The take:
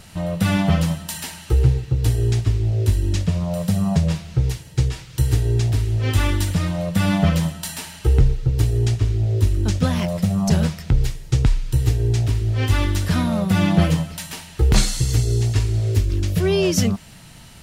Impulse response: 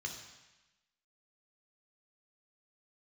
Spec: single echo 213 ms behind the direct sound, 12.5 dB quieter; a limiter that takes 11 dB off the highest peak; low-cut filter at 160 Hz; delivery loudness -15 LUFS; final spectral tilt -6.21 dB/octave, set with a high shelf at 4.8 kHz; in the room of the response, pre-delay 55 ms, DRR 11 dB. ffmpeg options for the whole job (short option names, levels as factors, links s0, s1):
-filter_complex "[0:a]highpass=160,highshelf=f=4800:g=-8,alimiter=limit=0.133:level=0:latency=1,aecho=1:1:213:0.237,asplit=2[s0][s1];[1:a]atrim=start_sample=2205,adelay=55[s2];[s1][s2]afir=irnorm=-1:irlink=0,volume=0.282[s3];[s0][s3]amix=inputs=2:normalize=0,volume=3.98"